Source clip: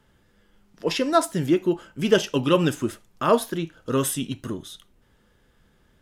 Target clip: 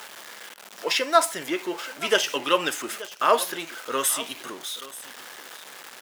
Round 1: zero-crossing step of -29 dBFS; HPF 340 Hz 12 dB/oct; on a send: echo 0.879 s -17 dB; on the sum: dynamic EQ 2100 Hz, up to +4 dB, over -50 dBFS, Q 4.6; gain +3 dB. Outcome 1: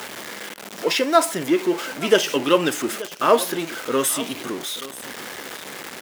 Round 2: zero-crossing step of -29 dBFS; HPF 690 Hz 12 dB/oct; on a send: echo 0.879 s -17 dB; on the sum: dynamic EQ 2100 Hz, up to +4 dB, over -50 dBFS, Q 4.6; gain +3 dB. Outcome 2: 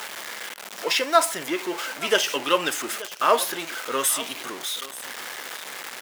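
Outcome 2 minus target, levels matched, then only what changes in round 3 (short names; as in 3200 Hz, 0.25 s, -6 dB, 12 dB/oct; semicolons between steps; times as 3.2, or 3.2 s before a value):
zero-crossing step: distortion +6 dB
change: zero-crossing step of -35.5 dBFS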